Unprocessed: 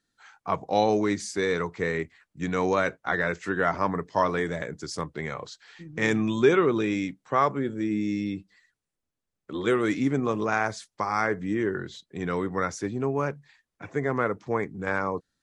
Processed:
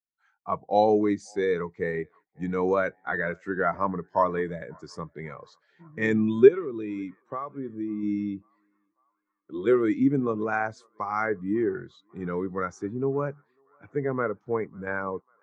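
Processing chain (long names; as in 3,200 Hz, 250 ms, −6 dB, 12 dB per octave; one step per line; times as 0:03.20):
0:06.48–0:08.03: downward compressor 6 to 1, threshold −27 dBFS, peak gain reduction 10 dB
feedback echo with a band-pass in the loop 546 ms, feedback 77%, band-pass 1,100 Hz, level −20.5 dB
every bin expanded away from the loudest bin 1.5 to 1
level +4.5 dB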